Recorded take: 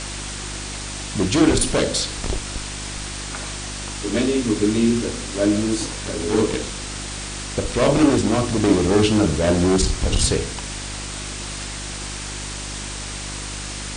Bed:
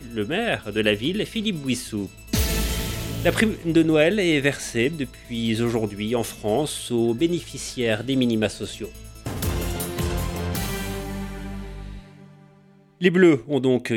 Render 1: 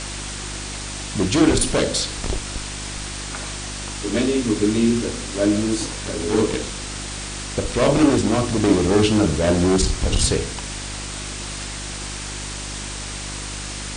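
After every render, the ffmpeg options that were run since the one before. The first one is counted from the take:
-af anull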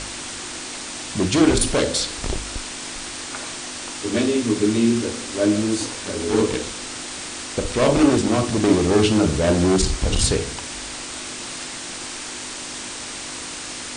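-af "bandreject=f=50:t=h:w=4,bandreject=f=100:t=h:w=4,bandreject=f=150:t=h:w=4,bandreject=f=200:t=h:w=4"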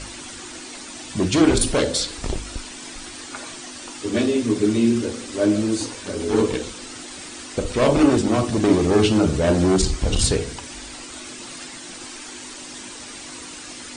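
-af "afftdn=nr=9:nf=-33"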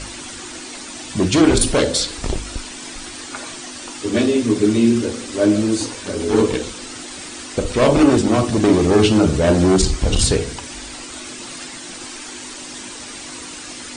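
-af "volume=1.5,alimiter=limit=0.708:level=0:latency=1"

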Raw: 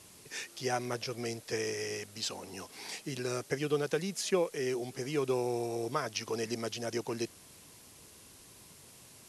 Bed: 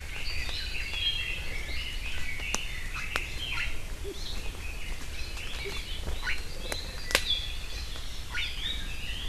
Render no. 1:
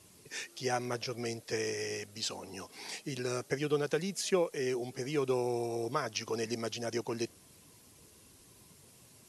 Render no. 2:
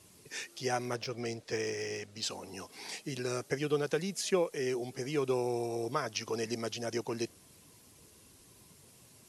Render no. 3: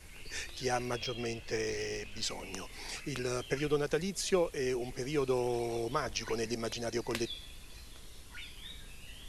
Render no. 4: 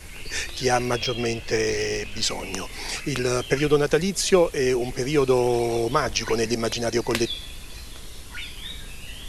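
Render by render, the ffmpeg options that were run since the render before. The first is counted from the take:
-af "afftdn=nr=6:nf=-56"
-filter_complex "[0:a]asettb=1/sr,asplit=3[s0][s1][s2];[s0]atrim=end=0.964[s3];[s1]atrim=start=0.96:end=2.23,asetpts=PTS-STARTPTS,afade=t=in:d=0.004:c=qsin,afade=t=out:st=1.266:d=0.004:c=qsin,adynamicsmooth=sensitivity=6:basefreq=7400[s4];[s2]atrim=start=2.226[s5];[s3][s4]acrossfade=d=0.004:c1=hsin:c2=qsin[s6];[s6][s5]acrossfade=d=0.004:c1=qsin:c2=hsin"
-filter_complex "[1:a]volume=0.188[s0];[0:a][s0]amix=inputs=2:normalize=0"
-af "volume=3.76"

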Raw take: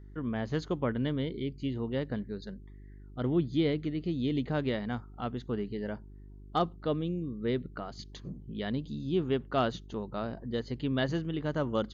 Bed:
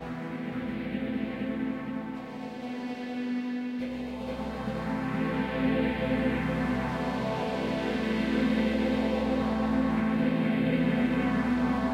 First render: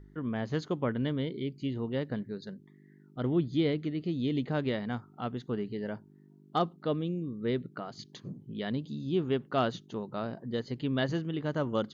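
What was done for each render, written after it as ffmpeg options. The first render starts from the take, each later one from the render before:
-af "bandreject=f=50:t=h:w=4,bandreject=f=100:t=h:w=4"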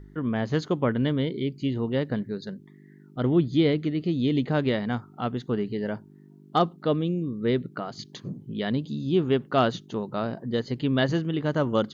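-af "volume=2.11"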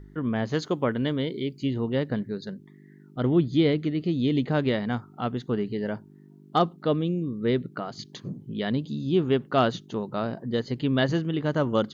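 -filter_complex "[0:a]asettb=1/sr,asplit=3[s0][s1][s2];[s0]atrim=end=0.494[s3];[s1]atrim=start=0.49:end=1.64,asetpts=PTS-STARTPTS,afade=t=in:d=0.004:c=qsin,afade=t=out:st=1.146:d=0.004:c=qsin,bass=f=250:g=-4,treble=f=4000:g=4[s4];[s2]atrim=start=1.636[s5];[s3][s4]acrossfade=d=0.004:c1=hsin:c2=qsin[s6];[s6][s5]acrossfade=d=0.004:c1=qsin:c2=hsin"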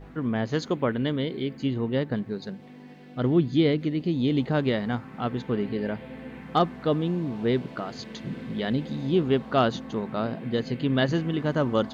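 -filter_complex "[1:a]volume=0.224[s0];[0:a][s0]amix=inputs=2:normalize=0"

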